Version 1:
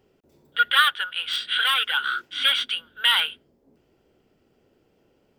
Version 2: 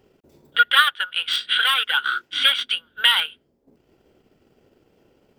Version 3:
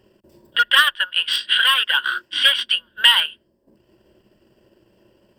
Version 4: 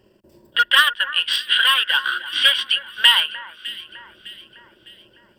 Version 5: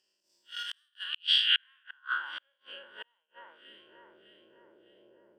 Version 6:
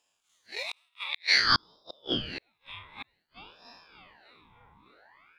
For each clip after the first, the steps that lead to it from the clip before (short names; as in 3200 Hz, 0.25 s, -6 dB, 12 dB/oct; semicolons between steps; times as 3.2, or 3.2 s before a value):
transient shaper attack +3 dB, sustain -8 dB; in parallel at -3 dB: compressor, threshold -27 dBFS, peak gain reduction 15.5 dB
in parallel at -4.5 dB: hard clip -10 dBFS, distortion -17 dB; on the sum: ripple EQ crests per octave 1.3, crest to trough 10 dB; gain -3 dB
echo with dull and thin repeats by turns 0.303 s, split 1900 Hz, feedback 66%, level -14 dB
time blur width 0.104 s; flipped gate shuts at -12 dBFS, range -40 dB; band-pass sweep 5900 Hz -> 480 Hz, 0.88–2.75; gain +2 dB
ring modulator with a swept carrier 1300 Hz, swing 65%, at 0.54 Hz; gain +5 dB